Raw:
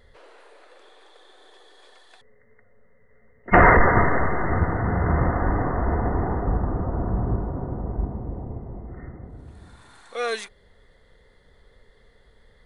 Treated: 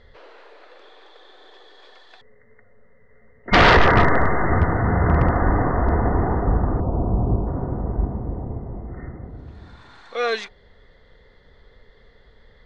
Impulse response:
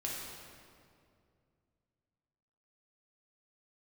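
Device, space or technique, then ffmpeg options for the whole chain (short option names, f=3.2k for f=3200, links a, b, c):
synthesiser wavefolder: -filter_complex "[0:a]bandreject=f=183:t=h:w=4,bandreject=f=366:t=h:w=4,bandreject=f=549:t=h:w=4,bandreject=f=732:t=h:w=4,bandreject=f=915:t=h:w=4,asettb=1/sr,asplit=3[a][b][c];[a]atrim=end=6.804[d];[b]atrim=start=6.8:end=7.47,asetpts=PTS-STARTPTS,afade=t=in:d=0.004:c=qsin,afade=t=out:st=0.666:d=0.004:c=qsin,lowpass=f=1k:w=0.5412,lowpass=f=1k:w=1.3066[e];[c]atrim=start=7.466[f];[d][e]acrossfade=d=0.004:c1=hsin:c2=qsin[g];[g][f]acrossfade=d=0.004:c1=qsin:c2=hsin,aeval=exprs='0.282*(abs(mod(val(0)/0.282+3,4)-2)-1)':c=same,lowpass=f=5.4k:w=0.5412,lowpass=f=5.4k:w=1.3066,volume=4dB"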